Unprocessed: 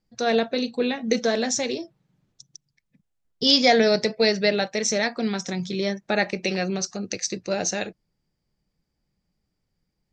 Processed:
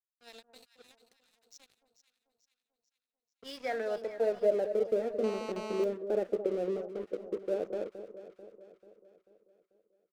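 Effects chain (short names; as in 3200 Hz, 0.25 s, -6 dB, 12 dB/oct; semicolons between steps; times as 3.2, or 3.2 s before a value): low-pass opened by the level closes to 790 Hz, open at -16 dBFS; graphic EQ 125/250/500/1000/2000/4000 Hz -4/+3/+6/-7/-4/-11 dB; 0.99–1.55 compressor 3:1, threshold -27 dBFS, peak gain reduction 11.5 dB; band-pass sweep 4500 Hz -> 440 Hz, 2.68–4.72; crossover distortion -44.5 dBFS; echo with dull and thin repeats by turns 0.22 s, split 1100 Hz, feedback 69%, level -10 dB; 5.24–5.84 GSM buzz -37 dBFS; ending taper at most 540 dB/s; gain -3.5 dB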